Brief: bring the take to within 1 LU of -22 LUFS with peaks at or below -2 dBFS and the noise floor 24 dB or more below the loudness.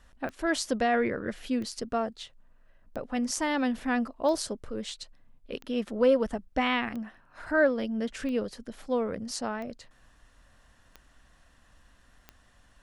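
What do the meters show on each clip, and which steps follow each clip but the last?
clicks found 10; loudness -29.5 LUFS; peak level -12.5 dBFS; loudness target -22.0 LUFS
-> de-click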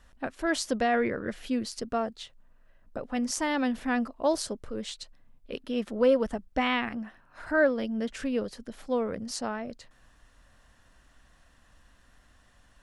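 clicks found 0; loudness -29.5 LUFS; peak level -12.5 dBFS; loudness target -22.0 LUFS
-> trim +7.5 dB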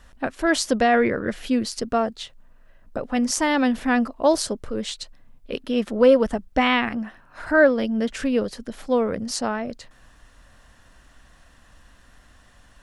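loudness -22.0 LUFS; peak level -5.0 dBFS; noise floor -54 dBFS

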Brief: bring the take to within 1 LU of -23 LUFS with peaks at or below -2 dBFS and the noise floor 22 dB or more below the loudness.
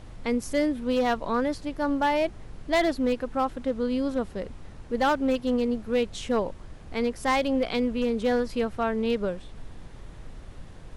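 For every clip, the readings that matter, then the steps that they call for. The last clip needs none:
clipped samples 0.9%; clipping level -17.5 dBFS; noise floor -45 dBFS; noise floor target -49 dBFS; loudness -27.0 LUFS; peak level -17.5 dBFS; loudness target -23.0 LUFS
-> clip repair -17.5 dBFS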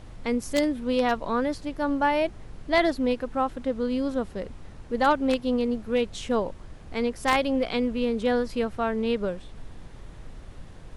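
clipped samples 0.0%; noise floor -45 dBFS; noise floor target -49 dBFS
-> noise print and reduce 6 dB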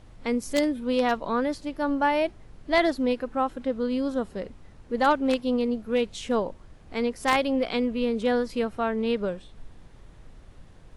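noise floor -50 dBFS; loudness -26.5 LUFS; peak level -8.5 dBFS; loudness target -23.0 LUFS
-> trim +3.5 dB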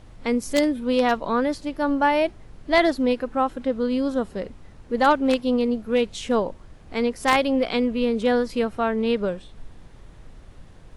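loudness -23.0 LUFS; peak level -5.0 dBFS; noise floor -47 dBFS

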